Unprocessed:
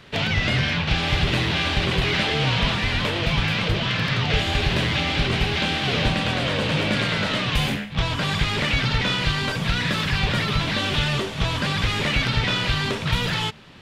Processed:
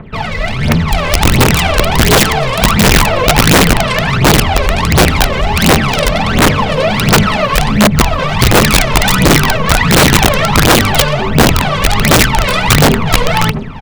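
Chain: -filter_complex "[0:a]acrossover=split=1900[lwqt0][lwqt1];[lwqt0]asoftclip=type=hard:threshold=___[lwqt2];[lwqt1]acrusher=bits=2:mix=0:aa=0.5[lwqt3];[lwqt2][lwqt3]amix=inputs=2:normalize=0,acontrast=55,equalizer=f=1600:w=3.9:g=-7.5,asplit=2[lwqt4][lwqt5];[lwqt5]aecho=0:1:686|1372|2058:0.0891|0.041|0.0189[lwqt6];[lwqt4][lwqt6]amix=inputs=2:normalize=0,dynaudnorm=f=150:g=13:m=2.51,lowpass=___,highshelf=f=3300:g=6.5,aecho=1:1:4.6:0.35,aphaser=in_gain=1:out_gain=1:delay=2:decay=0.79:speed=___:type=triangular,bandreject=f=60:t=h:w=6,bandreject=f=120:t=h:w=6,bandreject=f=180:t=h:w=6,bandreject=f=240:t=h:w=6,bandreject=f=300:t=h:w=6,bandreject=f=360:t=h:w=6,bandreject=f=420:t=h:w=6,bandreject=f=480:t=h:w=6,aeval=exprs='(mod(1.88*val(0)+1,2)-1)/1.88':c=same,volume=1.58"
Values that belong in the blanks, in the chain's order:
0.0376, 5200, 1.4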